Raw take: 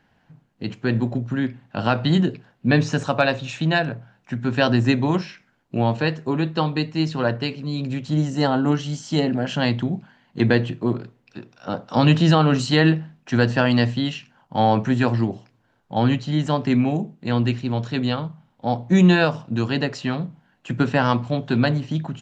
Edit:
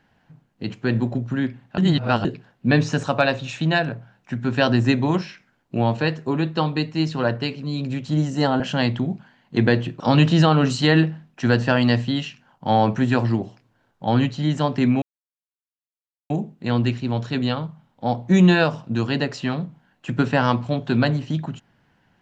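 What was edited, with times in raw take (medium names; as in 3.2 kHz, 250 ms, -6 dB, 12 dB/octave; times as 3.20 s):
1.78–2.25 s: reverse
8.60–9.43 s: delete
10.83–11.89 s: delete
16.91 s: insert silence 1.28 s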